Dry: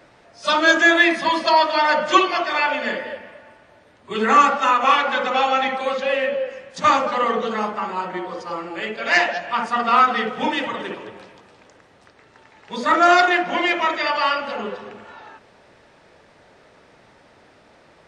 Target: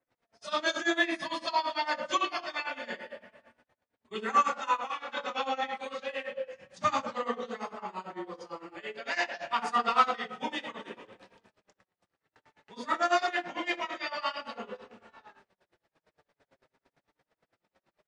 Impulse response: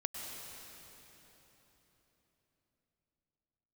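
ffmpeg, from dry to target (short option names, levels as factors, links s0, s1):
-filter_complex "[0:a]asettb=1/sr,asplit=3[s0][s1][s2];[s0]atrim=end=9.404[s3];[s1]atrim=start=9.4:end=10.11,asetpts=PTS-STARTPTS,afade=t=in:d=0.004:c=qsin,afade=t=out:st=0.706:d=0.004:c=qsin,acontrast=44[s4];[s2]atrim=start=10.106[s5];[s3][s4]acrossfade=d=0.004:c1=hsin:c2=qsin[s6];[s6][s5]acrossfade=d=0.004:c1=qsin:c2=hsin,flanger=delay=3.8:depth=3.9:regen=55:speed=0.27:shape=triangular,aecho=1:1:26|63:0.376|0.376,tremolo=f=8.9:d=0.89,asettb=1/sr,asplit=3[s7][s8][s9];[s7]atrim=end=4.764[s10];[s8]atrim=start=4.76:end=5.17,asetpts=PTS-STARTPTS,afade=t=in:d=0.004:c=qsin,afade=t=out:st=0.406:d=0.004:c=qsin,acompressor=threshold=0.0501:ratio=6[s11];[s9]atrim=start=5.166[s12];[s10][s11]acrossfade=d=0.004:c1=hsin:c2=qsin[s13];[s13][s12]acrossfade=d=0.004:c1=qsin:c2=hsin,asettb=1/sr,asplit=3[s14][s15][s16];[s14]atrim=end=6.544[s17];[s15]atrim=start=6.54:end=7.15,asetpts=PTS-STARTPTS,afade=t=in:d=0.004:c=qsin,afade=t=out:st=0.606:d=0.004:c=qsin,equalizer=f=120:w=1.2:g=10.5[s18];[s16]atrim=start=7.146[s19];[s17][s18]acrossfade=d=0.004:c1=hsin:c2=qsin[s20];[s20][s19]acrossfade=d=0.004:c1=qsin:c2=hsin,agate=range=0.1:threshold=0.00178:ratio=16:detection=peak,adynamicequalizer=threshold=0.01:dfrequency=3800:dqfactor=0.7:tfrequency=3800:tqfactor=0.7:attack=5:release=100:ratio=0.375:range=2.5:mode=boostabove:tftype=highshelf,volume=0.447"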